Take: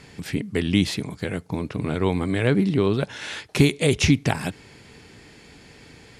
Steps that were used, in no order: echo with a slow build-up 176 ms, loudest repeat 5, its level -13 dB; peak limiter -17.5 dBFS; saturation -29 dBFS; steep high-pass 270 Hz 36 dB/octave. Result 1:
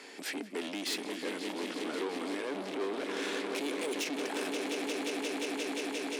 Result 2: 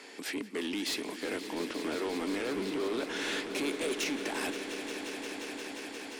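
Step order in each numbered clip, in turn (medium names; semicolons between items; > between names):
echo with a slow build-up > peak limiter > saturation > steep high-pass; peak limiter > steep high-pass > saturation > echo with a slow build-up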